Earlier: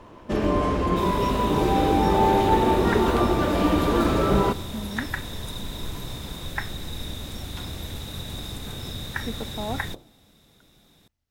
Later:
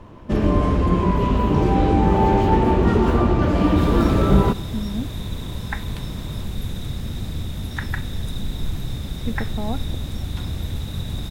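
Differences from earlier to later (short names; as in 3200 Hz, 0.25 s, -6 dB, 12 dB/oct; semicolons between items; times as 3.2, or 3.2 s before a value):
second sound: entry +2.80 s; master: add tone controls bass +9 dB, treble -2 dB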